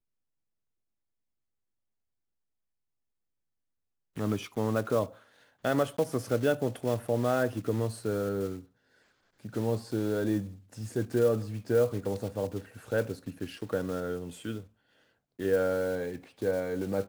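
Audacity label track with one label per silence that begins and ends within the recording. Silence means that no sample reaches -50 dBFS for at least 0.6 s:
8.640000	9.400000	silence
14.670000	15.390000	silence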